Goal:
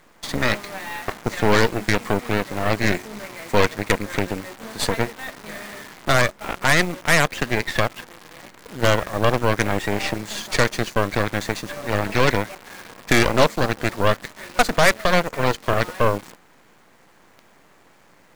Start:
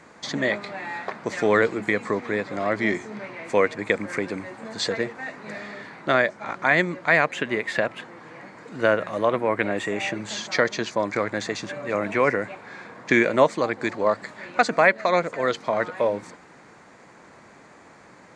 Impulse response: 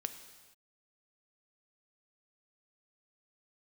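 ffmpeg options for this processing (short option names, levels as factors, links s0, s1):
-af "aeval=exprs='0.562*(cos(1*acos(clip(val(0)/0.562,-1,1)))-cos(1*PI/2))+0.00355*(cos(5*acos(clip(val(0)/0.562,-1,1)))-cos(5*PI/2))+0.00355*(cos(7*acos(clip(val(0)/0.562,-1,1)))-cos(7*PI/2))+0.141*(cos(8*acos(clip(val(0)/0.562,-1,1)))-cos(8*PI/2))':c=same,acrusher=bits=7:dc=4:mix=0:aa=0.000001"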